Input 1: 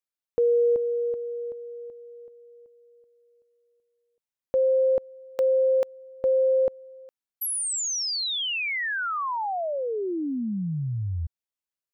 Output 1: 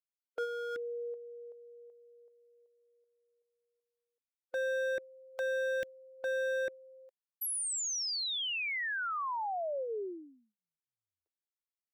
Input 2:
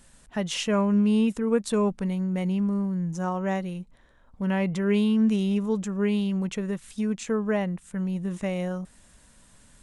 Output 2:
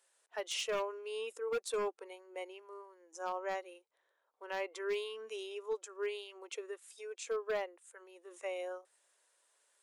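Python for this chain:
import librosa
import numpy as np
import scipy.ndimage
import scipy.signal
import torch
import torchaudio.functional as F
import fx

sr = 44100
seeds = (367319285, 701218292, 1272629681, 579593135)

y = scipy.signal.sosfilt(scipy.signal.cheby2(6, 60, 200.0, 'highpass', fs=sr, output='sos'), x)
y = 10.0 ** (-21.5 / 20.0) * (np.abs((y / 10.0 ** (-21.5 / 20.0) + 3.0) % 4.0 - 2.0) - 1.0)
y = fx.noise_reduce_blind(y, sr, reduce_db=8)
y = F.gain(torch.from_numpy(y), -7.0).numpy()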